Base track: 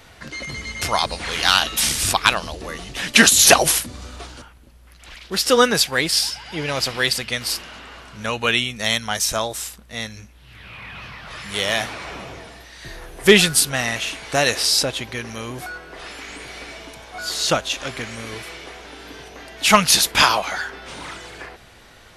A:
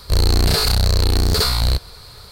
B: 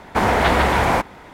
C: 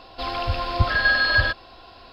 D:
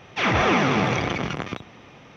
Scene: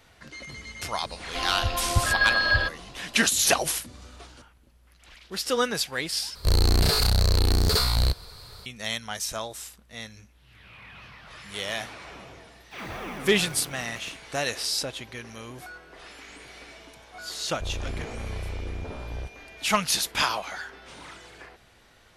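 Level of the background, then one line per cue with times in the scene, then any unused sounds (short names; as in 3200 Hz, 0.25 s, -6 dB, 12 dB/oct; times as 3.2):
base track -10 dB
1.16 add C -3 dB
6.35 replace with A -5 dB
12.55 add D -17 dB + block floating point 5-bit
17.5 add A -17.5 dB + pulse-width modulation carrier 2400 Hz
not used: B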